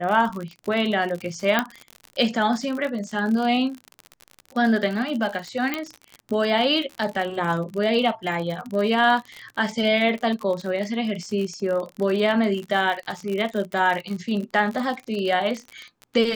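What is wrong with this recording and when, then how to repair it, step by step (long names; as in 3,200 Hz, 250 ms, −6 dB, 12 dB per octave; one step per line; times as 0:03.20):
surface crackle 57 per second −28 dBFS
0:01.59: click −6 dBFS
0:05.74: click −10 dBFS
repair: click removal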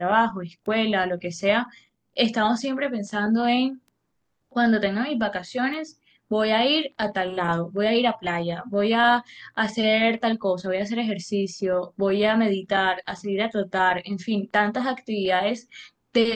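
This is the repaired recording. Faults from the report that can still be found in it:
0:05.74: click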